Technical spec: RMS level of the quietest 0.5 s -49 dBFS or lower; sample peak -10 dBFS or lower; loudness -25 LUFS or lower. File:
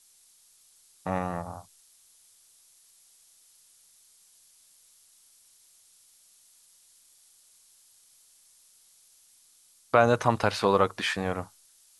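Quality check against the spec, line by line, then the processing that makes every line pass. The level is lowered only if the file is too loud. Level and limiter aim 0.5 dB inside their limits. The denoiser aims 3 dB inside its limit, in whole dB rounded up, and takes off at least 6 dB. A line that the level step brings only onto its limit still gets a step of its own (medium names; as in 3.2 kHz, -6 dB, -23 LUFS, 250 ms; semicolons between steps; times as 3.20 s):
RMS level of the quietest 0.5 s -61 dBFS: pass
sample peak -5.5 dBFS: fail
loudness -26.5 LUFS: pass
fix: peak limiter -10.5 dBFS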